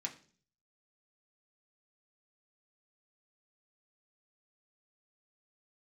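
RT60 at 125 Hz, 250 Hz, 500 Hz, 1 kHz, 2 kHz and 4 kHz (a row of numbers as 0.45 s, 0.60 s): 0.75 s, 0.60 s, 0.50 s, 0.40 s, 0.40 s, 0.50 s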